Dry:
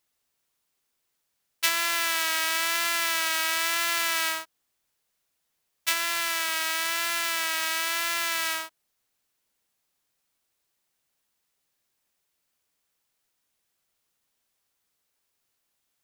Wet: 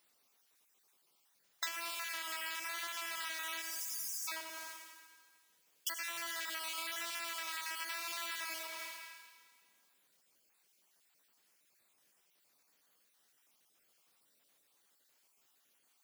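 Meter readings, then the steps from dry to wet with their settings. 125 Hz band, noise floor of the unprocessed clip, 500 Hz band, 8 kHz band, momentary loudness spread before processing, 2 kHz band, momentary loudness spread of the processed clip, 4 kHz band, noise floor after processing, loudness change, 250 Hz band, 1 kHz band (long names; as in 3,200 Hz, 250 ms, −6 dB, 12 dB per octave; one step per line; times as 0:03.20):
can't be measured, −78 dBFS, −14.5 dB, −13.0 dB, 4 LU, −14.5 dB, 9 LU, −14.5 dB, −74 dBFS, −14.5 dB, −14.5 dB, −14.0 dB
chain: time-frequency cells dropped at random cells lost 34%
high-pass filter 180 Hz 12 dB per octave
time-frequency box erased 0:03.62–0:04.28, 250–4,600 Hz
four-comb reverb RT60 1.7 s, combs from 27 ms, DRR 11.5 dB
noise that follows the level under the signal 29 dB
on a send: feedback echo with a low-pass in the loop 89 ms, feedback 48%, low-pass 2,000 Hz, level −6.5 dB
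on the sum: downward compressor 20 to 1, threshold −42 dBFS, peak gain reduction 22 dB
level +5.5 dB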